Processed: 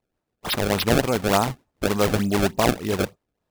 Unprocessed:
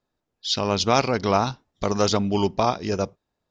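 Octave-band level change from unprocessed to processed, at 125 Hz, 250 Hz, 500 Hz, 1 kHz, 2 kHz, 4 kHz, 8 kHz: +2.0, +2.0, +0.5, -2.0, +5.0, -1.0, +1.5 dB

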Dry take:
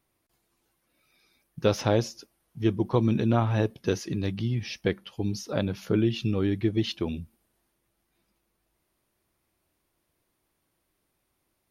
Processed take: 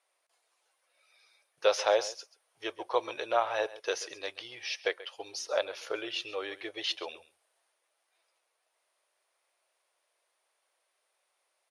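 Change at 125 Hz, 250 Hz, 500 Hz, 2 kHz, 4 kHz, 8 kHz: under -35 dB, -21.5 dB, -2.5 dB, +2.0 dB, +2.0 dB, +1.0 dB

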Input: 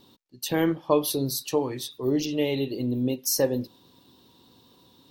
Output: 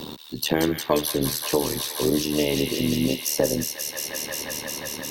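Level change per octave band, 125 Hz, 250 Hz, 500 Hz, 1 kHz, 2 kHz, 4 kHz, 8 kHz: +2.0, +2.0, +1.5, +2.5, +7.0, +7.0, +5.5 dB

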